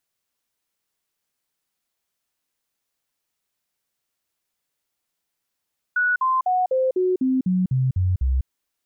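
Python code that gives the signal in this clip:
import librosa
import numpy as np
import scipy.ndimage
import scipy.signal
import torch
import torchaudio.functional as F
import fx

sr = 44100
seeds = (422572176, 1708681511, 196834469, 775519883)

y = fx.stepped_sweep(sr, from_hz=1470.0, direction='down', per_octave=2, tones=10, dwell_s=0.2, gap_s=0.05, level_db=-17.0)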